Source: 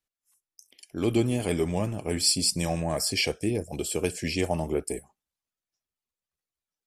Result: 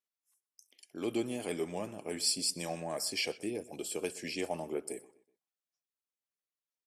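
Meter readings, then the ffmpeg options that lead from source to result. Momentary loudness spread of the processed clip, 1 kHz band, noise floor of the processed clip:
9 LU, -7.5 dB, under -85 dBFS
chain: -filter_complex "[0:a]highpass=250,asplit=2[a][b];[b]adelay=125,lowpass=f=4.4k:p=1,volume=-19dB,asplit=2[c][d];[d]adelay=125,lowpass=f=4.4k:p=1,volume=0.39,asplit=2[e][f];[f]adelay=125,lowpass=f=4.4k:p=1,volume=0.39[g];[a][c][e][g]amix=inputs=4:normalize=0,volume=-7.5dB"

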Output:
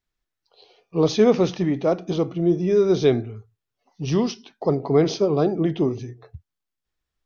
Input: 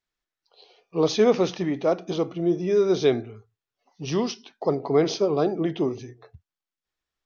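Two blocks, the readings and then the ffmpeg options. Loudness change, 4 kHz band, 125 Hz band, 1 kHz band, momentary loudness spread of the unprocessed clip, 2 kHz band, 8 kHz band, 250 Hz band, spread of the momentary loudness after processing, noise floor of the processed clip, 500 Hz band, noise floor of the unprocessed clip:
+2.5 dB, 0.0 dB, +7.0 dB, +0.5 dB, 10 LU, 0.0 dB, n/a, +4.0 dB, 10 LU, -84 dBFS, +2.0 dB, under -85 dBFS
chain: -af "lowshelf=f=200:g=11"

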